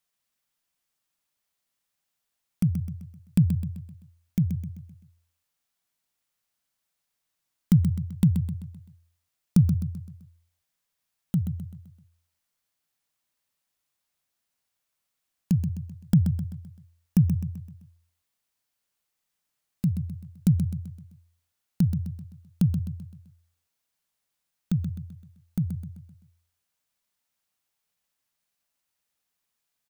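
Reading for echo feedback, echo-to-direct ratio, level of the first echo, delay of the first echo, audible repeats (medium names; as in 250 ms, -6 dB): 45%, -7.0 dB, -8.0 dB, 129 ms, 4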